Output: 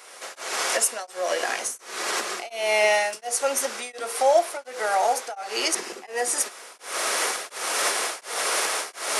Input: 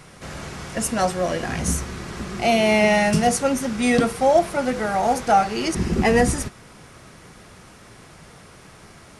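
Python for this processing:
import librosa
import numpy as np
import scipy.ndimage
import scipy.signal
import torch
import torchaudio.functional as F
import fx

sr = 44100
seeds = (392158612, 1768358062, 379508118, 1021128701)

y = fx.recorder_agc(x, sr, target_db=-12.0, rise_db_per_s=39.0, max_gain_db=30)
y = scipy.signal.sosfilt(scipy.signal.butter(4, 450.0, 'highpass', fs=sr, output='sos'), y)
y = fx.high_shelf(y, sr, hz=4700.0, db=7.0)
y = y * np.abs(np.cos(np.pi * 1.4 * np.arange(len(y)) / sr))
y = y * librosa.db_to_amplitude(-1.5)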